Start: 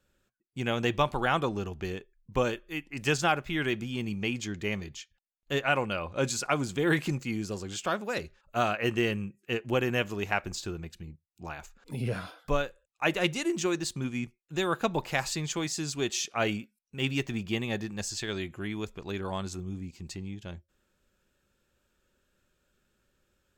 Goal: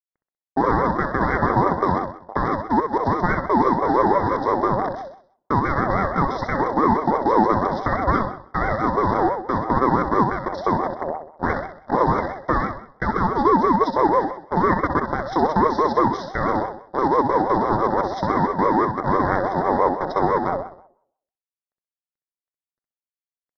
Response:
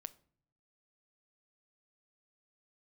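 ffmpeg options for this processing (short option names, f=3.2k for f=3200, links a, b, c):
-filter_complex "[0:a]highpass=f=220:p=1,equalizer=f=310:t=o:w=2:g=10,acompressor=threshold=-25dB:ratio=6,alimiter=level_in=0.5dB:limit=-24dB:level=0:latency=1:release=478,volume=-0.5dB,acrusher=bits=7:dc=4:mix=0:aa=0.000001,aeval=exprs='sgn(val(0))*max(abs(val(0))-0.00168,0)':c=same,asuperstop=centerf=2400:order=20:qfactor=0.88,aecho=1:1:64|128|192|256|320:0.501|0.226|0.101|0.0457|0.0206,asplit=2[a][b];[1:a]atrim=start_sample=2205,lowpass=3k[c];[b][c]afir=irnorm=-1:irlink=0,volume=16.5dB[d];[a][d]amix=inputs=2:normalize=0,aresample=11025,aresample=44100,aeval=exprs='val(0)*sin(2*PI*660*n/s+660*0.2/6*sin(2*PI*6*n/s))':c=same,volume=4.5dB"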